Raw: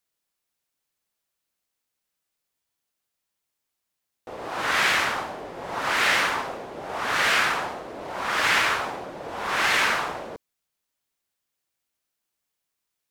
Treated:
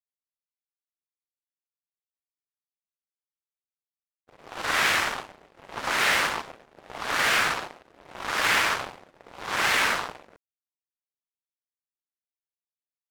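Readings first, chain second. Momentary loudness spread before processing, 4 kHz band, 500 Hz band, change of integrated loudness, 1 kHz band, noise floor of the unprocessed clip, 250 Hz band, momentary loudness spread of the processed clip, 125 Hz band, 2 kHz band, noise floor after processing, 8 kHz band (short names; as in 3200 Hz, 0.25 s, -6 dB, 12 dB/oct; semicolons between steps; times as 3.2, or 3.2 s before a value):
16 LU, -1.0 dB, -4.0 dB, -1.0 dB, -2.5 dB, -82 dBFS, -3.0 dB, 18 LU, -2.0 dB, -2.0 dB, under -85 dBFS, +0.5 dB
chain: soft clip -19.5 dBFS, distortion -13 dB; power-law curve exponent 3; gate with hold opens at -52 dBFS; gain +6 dB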